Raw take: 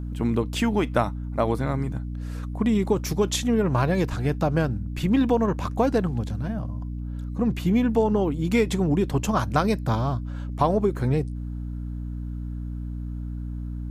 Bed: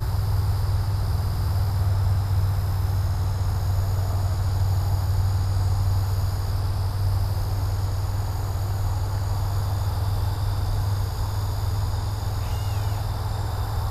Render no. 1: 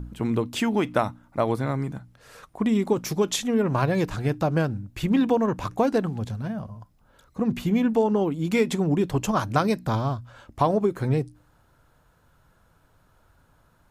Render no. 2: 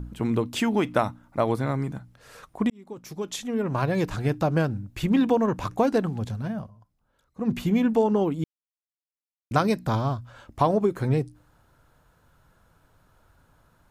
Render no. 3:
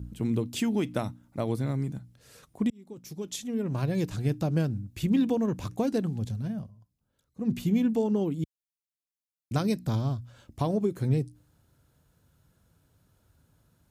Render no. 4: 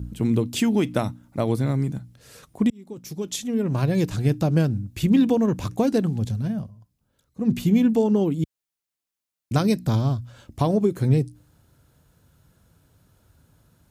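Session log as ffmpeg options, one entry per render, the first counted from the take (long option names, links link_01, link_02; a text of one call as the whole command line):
ffmpeg -i in.wav -af "bandreject=frequency=60:width_type=h:width=4,bandreject=frequency=120:width_type=h:width=4,bandreject=frequency=180:width_type=h:width=4,bandreject=frequency=240:width_type=h:width=4,bandreject=frequency=300:width_type=h:width=4" out.wav
ffmpeg -i in.wav -filter_complex "[0:a]asplit=6[link_01][link_02][link_03][link_04][link_05][link_06];[link_01]atrim=end=2.7,asetpts=PTS-STARTPTS,afade=type=out:start_time=2.696:duration=0.004:curve=hsin[link_07];[link_02]atrim=start=2.7:end=6.71,asetpts=PTS-STARTPTS,afade=type=in:duration=1.46,afade=type=out:start_time=3.89:duration=0.12:silence=0.251189[link_08];[link_03]atrim=start=6.71:end=7.37,asetpts=PTS-STARTPTS,volume=-12dB[link_09];[link_04]atrim=start=7.37:end=8.44,asetpts=PTS-STARTPTS,afade=type=in:duration=0.12:silence=0.251189,afade=type=out:start_time=1.066:duration=0.004:curve=hsin[link_10];[link_05]atrim=start=8.44:end=9.51,asetpts=PTS-STARTPTS,volume=0[link_11];[link_06]atrim=start=9.51,asetpts=PTS-STARTPTS,afade=type=in:duration=0.004:curve=hsin[link_12];[link_07][link_08][link_09][link_10][link_11][link_12]concat=n=6:v=0:a=1" out.wav
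ffmpeg -i in.wav -af "highpass=63,equalizer=frequency=1100:width_type=o:width=2.5:gain=-13" out.wav
ffmpeg -i in.wav -af "volume=6.5dB" out.wav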